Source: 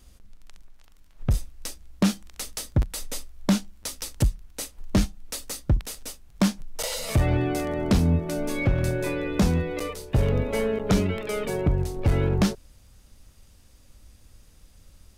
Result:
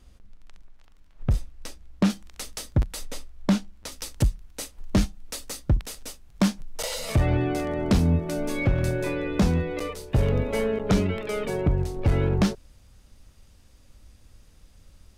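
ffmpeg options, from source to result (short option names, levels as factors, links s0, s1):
-af "asetnsamples=n=441:p=0,asendcmd='2.1 lowpass f 7300;3.05 lowpass f 3600;3.92 lowpass f 9400;7.12 lowpass f 5400;7.91 lowpass f 11000;9.04 lowpass f 6000;9.96 lowpass f 11000;10.64 lowpass f 6400',lowpass=f=3300:p=1"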